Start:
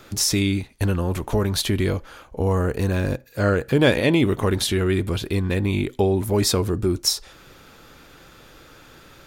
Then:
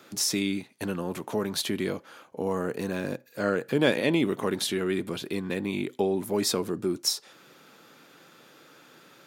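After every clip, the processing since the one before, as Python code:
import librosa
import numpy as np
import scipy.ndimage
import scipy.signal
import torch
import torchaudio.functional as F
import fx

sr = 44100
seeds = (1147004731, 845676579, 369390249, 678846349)

y = scipy.signal.sosfilt(scipy.signal.butter(4, 160.0, 'highpass', fs=sr, output='sos'), x)
y = y * librosa.db_to_amplitude(-5.5)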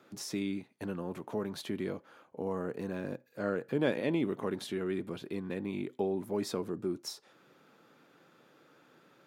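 y = fx.high_shelf(x, sr, hz=2500.0, db=-11.0)
y = y * librosa.db_to_amplitude(-6.0)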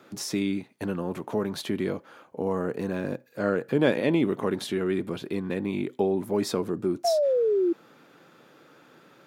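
y = fx.spec_paint(x, sr, seeds[0], shape='fall', start_s=7.04, length_s=0.69, low_hz=330.0, high_hz=710.0, level_db=-30.0)
y = y * librosa.db_to_amplitude(7.5)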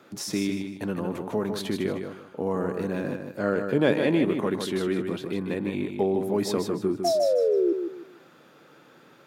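y = fx.echo_feedback(x, sr, ms=154, feedback_pct=28, wet_db=-6.5)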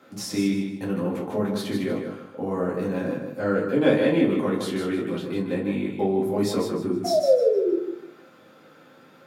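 y = fx.room_shoebox(x, sr, seeds[1], volume_m3=140.0, walls='furnished', distance_m=2.1)
y = y * librosa.db_to_amplitude(-3.5)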